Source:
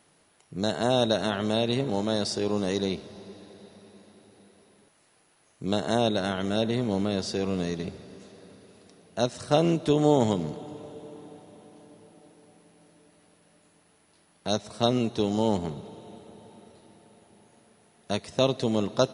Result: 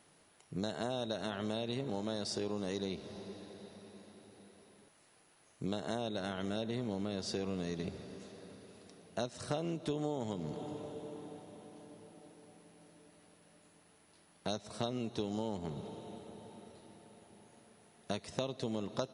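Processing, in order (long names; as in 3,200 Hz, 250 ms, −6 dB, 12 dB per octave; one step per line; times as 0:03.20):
downward compressor 6 to 1, threshold −31 dBFS, peak gain reduction 15 dB
level −2.5 dB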